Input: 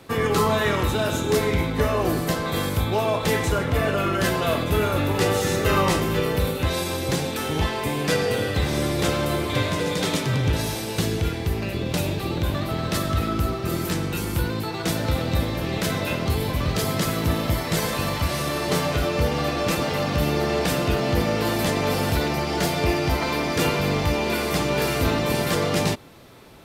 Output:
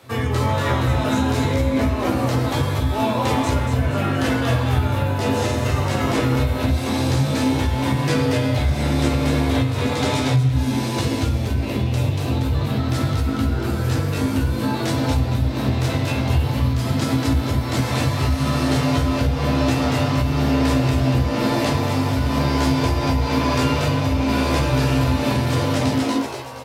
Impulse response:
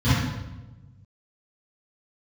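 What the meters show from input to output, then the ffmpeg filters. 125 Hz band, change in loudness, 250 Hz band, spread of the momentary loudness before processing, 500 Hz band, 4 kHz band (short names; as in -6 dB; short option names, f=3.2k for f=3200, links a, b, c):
+6.0 dB, +3.0 dB, +5.0 dB, 4 LU, -1.0 dB, 0.0 dB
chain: -filter_complex "[0:a]asplit=7[a][b][c][d][e][f][g];[b]adelay=235,afreqshift=120,volume=-3dB[h];[c]adelay=470,afreqshift=240,volume=-9.9dB[i];[d]adelay=705,afreqshift=360,volume=-16.9dB[j];[e]adelay=940,afreqshift=480,volume=-23.8dB[k];[f]adelay=1175,afreqshift=600,volume=-30.7dB[l];[g]adelay=1410,afreqshift=720,volume=-37.7dB[m];[a][h][i][j][k][l][m]amix=inputs=7:normalize=0,asplit=2[n][o];[1:a]atrim=start_sample=2205,afade=t=out:st=0.15:d=0.01,atrim=end_sample=7056[p];[o][p]afir=irnorm=-1:irlink=0,volume=-20.5dB[q];[n][q]amix=inputs=2:normalize=0,acompressor=threshold=-12dB:ratio=6,asplit=2[r][s];[s]adelay=15,volume=-7dB[t];[r][t]amix=inputs=2:normalize=0,acrossover=split=9700[u][v];[v]acompressor=threshold=-48dB:ratio=4:attack=1:release=60[w];[u][w]amix=inputs=2:normalize=0,highpass=77,equalizer=f=180:t=o:w=0.84:g=-9.5,bandreject=f=60:t=h:w=6,bandreject=f=120:t=h:w=6"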